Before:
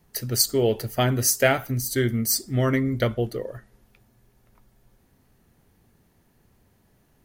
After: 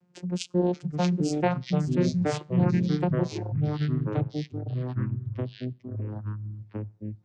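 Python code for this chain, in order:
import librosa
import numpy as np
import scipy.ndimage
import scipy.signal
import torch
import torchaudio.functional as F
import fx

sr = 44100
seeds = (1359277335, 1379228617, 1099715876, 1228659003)

y = fx.vocoder(x, sr, bands=8, carrier='saw', carrier_hz=178.0)
y = fx.echo_pitch(y, sr, ms=552, semitones=-3, count=3, db_per_echo=-3.0)
y = fx.dereverb_blind(y, sr, rt60_s=0.76)
y = y * 10.0 ** (-1.0 / 20.0)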